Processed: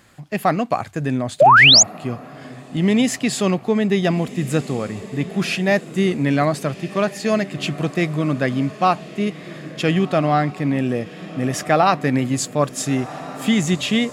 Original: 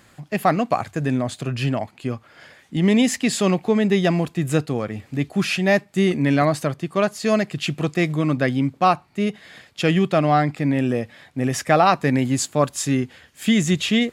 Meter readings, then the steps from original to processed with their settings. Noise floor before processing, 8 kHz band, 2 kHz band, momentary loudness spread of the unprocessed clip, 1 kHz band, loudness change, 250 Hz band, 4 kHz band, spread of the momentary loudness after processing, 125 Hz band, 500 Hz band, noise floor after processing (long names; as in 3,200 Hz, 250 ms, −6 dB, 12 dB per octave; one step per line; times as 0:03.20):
−54 dBFS, +7.5 dB, +6.0 dB, 9 LU, +3.0 dB, +2.5 dB, 0.0 dB, +9.5 dB, 10 LU, 0.0 dB, +1.0 dB, −38 dBFS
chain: on a send: feedback delay with all-pass diffusion 1,433 ms, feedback 44%, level −15 dB
on the sum: sound drawn into the spectrogram rise, 0:01.40–0:01.83, 520–7,300 Hz −9 dBFS